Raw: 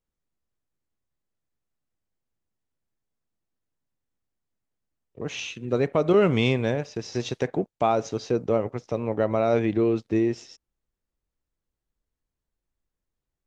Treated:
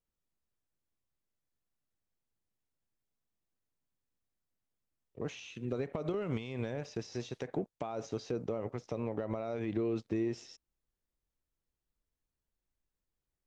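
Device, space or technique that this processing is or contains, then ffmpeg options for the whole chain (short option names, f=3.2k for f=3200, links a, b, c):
de-esser from a sidechain: -filter_complex "[0:a]asplit=2[a][b];[b]highpass=f=4.8k:p=1,apad=whole_len=593688[c];[a][c]sidechaincompress=threshold=-45dB:ratio=16:attack=3.8:release=76,volume=-4.5dB"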